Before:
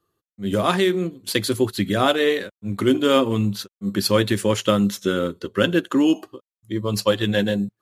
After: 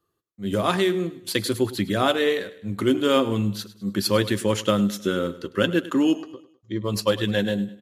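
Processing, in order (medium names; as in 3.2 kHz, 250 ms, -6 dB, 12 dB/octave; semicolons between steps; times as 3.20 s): 6.15–6.84 s: steep low-pass 7 kHz 96 dB/octave; feedback delay 103 ms, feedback 42%, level -17 dB; trim -2.5 dB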